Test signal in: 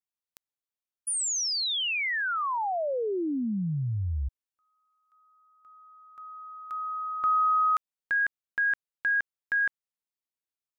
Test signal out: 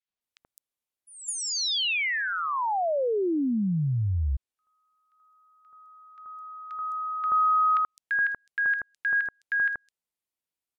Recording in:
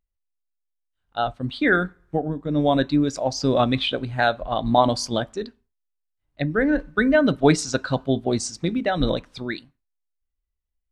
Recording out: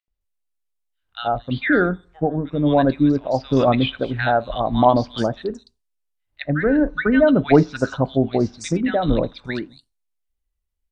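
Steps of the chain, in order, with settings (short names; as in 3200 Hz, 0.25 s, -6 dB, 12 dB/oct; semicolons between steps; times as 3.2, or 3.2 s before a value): three bands offset in time mids, lows, highs 80/210 ms, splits 1400/5300 Hz; treble ducked by the level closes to 2700 Hz, closed at -21.5 dBFS; gain +3.5 dB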